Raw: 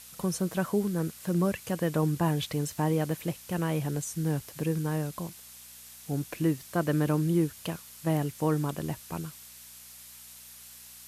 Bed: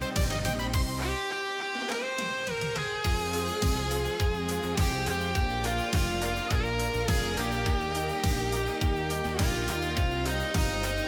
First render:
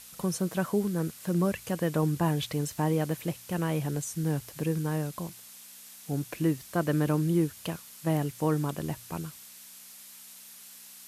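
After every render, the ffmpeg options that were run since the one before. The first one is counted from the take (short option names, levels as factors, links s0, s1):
-af "bandreject=f=60:t=h:w=4,bandreject=f=120:t=h:w=4"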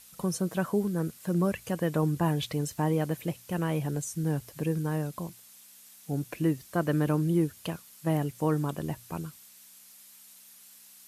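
-af "afftdn=nr=6:nf=-49"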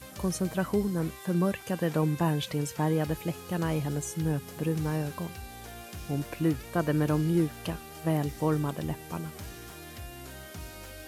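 -filter_complex "[1:a]volume=0.168[s0];[0:a][s0]amix=inputs=2:normalize=0"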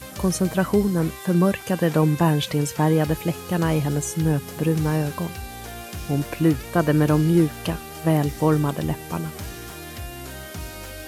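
-af "volume=2.51"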